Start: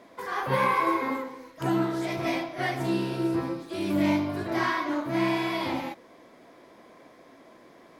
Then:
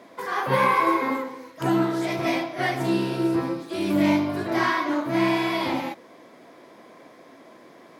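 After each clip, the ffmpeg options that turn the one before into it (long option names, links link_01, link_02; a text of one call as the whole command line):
ffmpeg -i in.wav -af "highpass=110,volume=4dB" out.wav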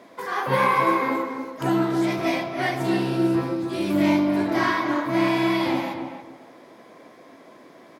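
ffmpeg -i in.wav -filter_complex "[0:a]asplit=2[link_01][link_02];[link_02]adelay=281,lowpass=frequency=1700:poles=1,volume=-6.5dB,asplit=2[link_03][link_04];[link_04]adelay=281,lowpass=frequency=1700:poles=1,volume=0.26,asplit=2[link_05][link_06];[link_06]adelay=281,lowpass=frequency=1700:poles=1,volume=0.26[link_07];[link_01][link_03][link_05][link_07]amix=inputs=4:normalize=0" out.wav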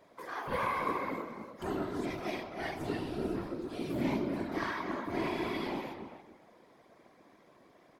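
ffmpeg -i in.wav -af "afftfilt=real='hypot(re,im)*cos(2*PI*random(0))':imag='hypot(re,im)*sin(2*PI*random(1))':win_size=512:overlap=0.75,volume=-7dB" out.wav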